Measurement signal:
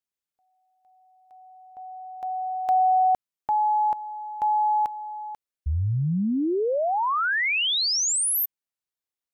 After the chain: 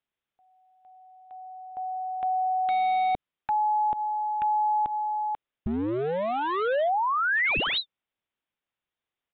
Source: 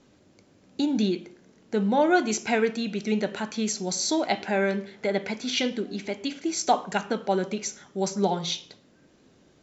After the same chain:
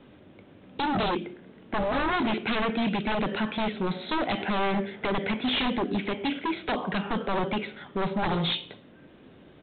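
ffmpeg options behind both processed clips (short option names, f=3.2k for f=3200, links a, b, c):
-filter_complex "[0:a]acrossover=split=420|2900[a][b][c];[b]acompressor=threshold=-32dB:ratio=6:attack=0.14:release=150:knee=2.83:detection=peak[d];[a][d][c]amix=inputs=3:normalize=0,aresample=8000,aeval=exprs='0.0398*(abs(mod(val(0)/0.0398+3,4)-2)-1)':c=same,aresample=44100,volume=7dB"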